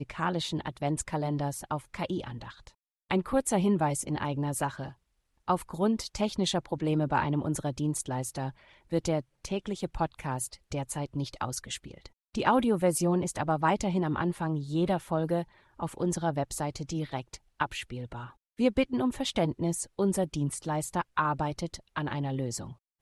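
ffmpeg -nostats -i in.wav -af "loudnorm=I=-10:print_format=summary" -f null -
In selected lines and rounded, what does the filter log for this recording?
Input Integrated:    -31.1 LUFS
Input True Peak:     -10.0 dBTP
Input LRA:             4.8 LU
Input Threshold:     -41.4 LUFS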